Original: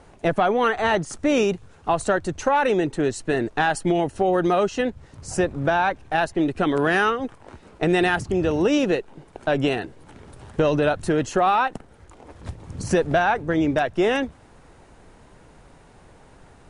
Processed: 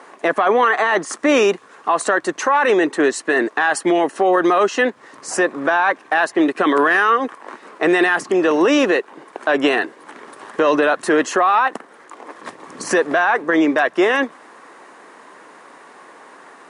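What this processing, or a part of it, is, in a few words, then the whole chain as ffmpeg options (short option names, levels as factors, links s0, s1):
laptop speaker: -af "highpass=f=270:w=0.5412,highpass=f=270:w=1.3066,equalizer=f=1100:t=o:w=0.32:g=11,equalizer=f=1800:t=o:w=0.52:g=8,alimiter=limit=0.2:level=0:latency=1:release=16,volume=2.24"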